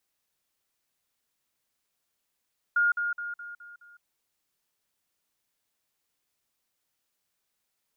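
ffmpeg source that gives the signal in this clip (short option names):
-f lavfi -i "aevalsrc='pow(10,(-20-6*floor(t/0.21))/20)*sin(2*PI*1420*t)*clip(min(mod(t,0.21),0.16-mod(t,0.21))/0.005,0,1)':d=1.26:s=44100"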